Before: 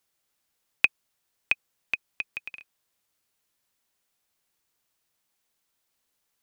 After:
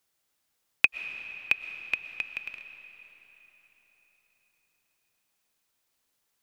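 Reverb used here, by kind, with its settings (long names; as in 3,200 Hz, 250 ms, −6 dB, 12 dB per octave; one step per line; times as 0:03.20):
comb and all-pass reverb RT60 4.4 s, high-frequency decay 0.8×, pre-delay 80 ms, DRR 9.5 dB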